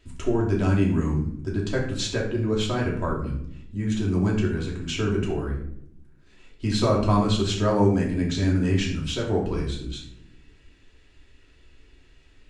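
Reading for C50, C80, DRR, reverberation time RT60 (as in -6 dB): 6.0 dB, 9.5 dB, -3.5 dB, no single decay rate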